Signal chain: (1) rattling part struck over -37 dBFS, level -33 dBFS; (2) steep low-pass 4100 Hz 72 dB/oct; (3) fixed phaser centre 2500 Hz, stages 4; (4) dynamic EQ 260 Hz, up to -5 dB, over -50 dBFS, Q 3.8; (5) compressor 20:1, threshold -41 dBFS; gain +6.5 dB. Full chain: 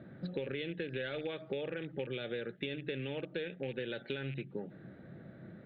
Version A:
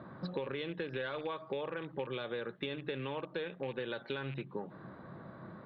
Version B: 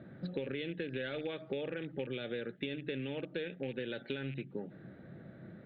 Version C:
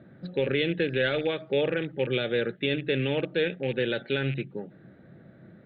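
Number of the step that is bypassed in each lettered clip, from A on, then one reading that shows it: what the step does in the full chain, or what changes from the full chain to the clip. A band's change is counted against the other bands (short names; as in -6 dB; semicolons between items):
3, 1 kHz band +9.5 dB; 4, 250 Hz band +2.0 dB; 5, mean gain reduction 8.0 dB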